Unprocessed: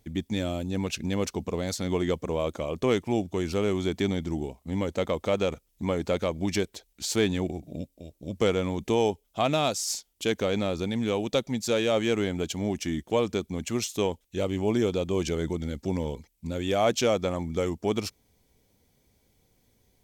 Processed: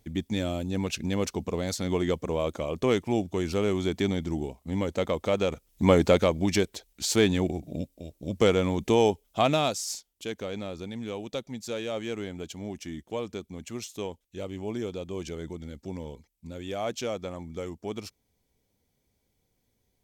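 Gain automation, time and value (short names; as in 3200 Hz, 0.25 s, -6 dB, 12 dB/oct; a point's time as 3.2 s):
5.51 s 0 dB
5.93 s +9 dB
6.45 s +2.5 dB
9.41 s +2.5 dB
10.25 s -8 dB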